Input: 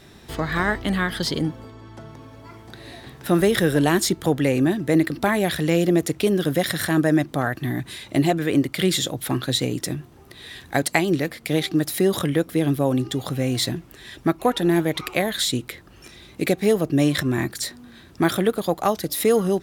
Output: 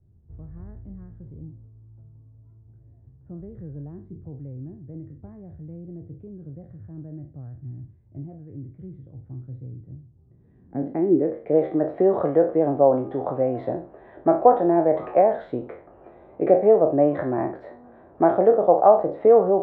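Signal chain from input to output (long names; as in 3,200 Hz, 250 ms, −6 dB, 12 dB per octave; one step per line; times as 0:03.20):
peak hold with a decay on every bin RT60 0.38 s
low-pass filter sweep 100 Hz → 670 Hz, 0:10.00–0:11.73
three-way crossover with the lows and the highs turned down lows −13 dB, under 410 Hz, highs −24 dB, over 2,600 Hz
level +3 dB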